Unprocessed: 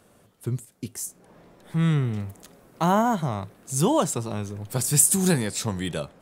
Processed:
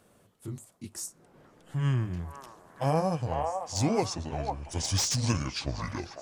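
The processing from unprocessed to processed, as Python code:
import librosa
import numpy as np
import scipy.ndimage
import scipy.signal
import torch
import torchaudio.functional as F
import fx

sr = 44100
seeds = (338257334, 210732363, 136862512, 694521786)

y = fx.pitch_glide(x, sr, semitones=-9.0, runs='starting unshifted')
y = fx.echo_stepped(y, sr, ms=499, hz=850.0, octaves=0.7, feedback_pct=70, wet_db=-0.5)
y = fx.slew_limit(y, sr, full_power_hz=500.0)
y = y * librosa.db_to_amplitude(-4.5)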